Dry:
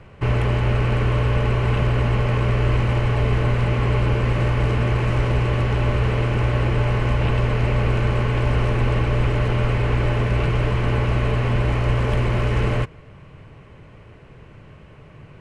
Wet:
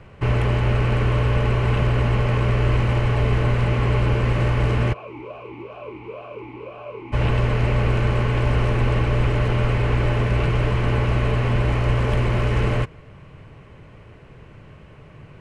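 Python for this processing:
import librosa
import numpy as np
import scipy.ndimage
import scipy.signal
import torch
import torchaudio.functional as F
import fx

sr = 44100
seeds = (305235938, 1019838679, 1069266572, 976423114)

y = fx.vowel_sweep(x, sr, vowels='a-u', hz=fx.line((4.92, 3.0), (7.12, 1.5)), at=(4.92, 7.12), fade=0.02)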